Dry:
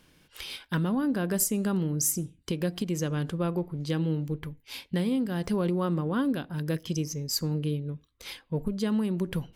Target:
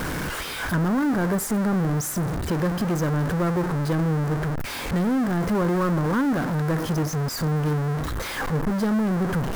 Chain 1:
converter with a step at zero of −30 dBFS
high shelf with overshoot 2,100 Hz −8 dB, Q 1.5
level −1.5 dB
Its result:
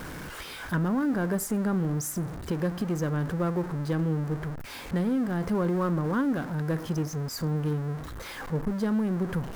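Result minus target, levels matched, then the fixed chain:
converter with a step at zero: distortion −7 dB
converter with a step at zero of −19 dBFS
high shelf with overshoot 2,100 Hz −8 dB, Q 1.5
level −1.5 dB

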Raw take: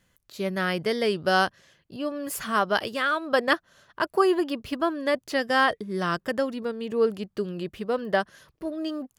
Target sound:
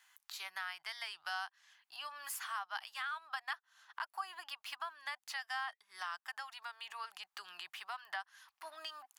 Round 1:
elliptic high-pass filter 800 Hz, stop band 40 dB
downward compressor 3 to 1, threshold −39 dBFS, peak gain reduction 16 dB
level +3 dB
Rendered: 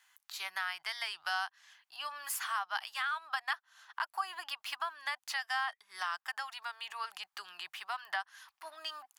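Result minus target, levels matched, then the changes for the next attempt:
downward compressor: peak gain reduction −5.5 dB
change: downward compressor 3 to 1, threshold −47.5 dBFS, peak gain reduction 22 dB

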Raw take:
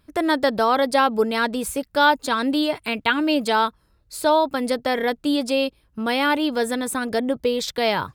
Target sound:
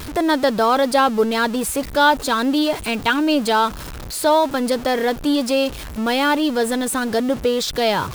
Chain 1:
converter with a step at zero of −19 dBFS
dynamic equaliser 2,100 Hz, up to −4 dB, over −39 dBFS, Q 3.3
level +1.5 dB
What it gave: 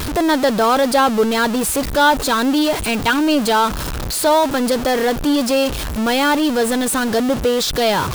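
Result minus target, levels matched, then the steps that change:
converter with a step at zero: distortion +7 dB
change: converter with a step at zero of −27.5 dBFS

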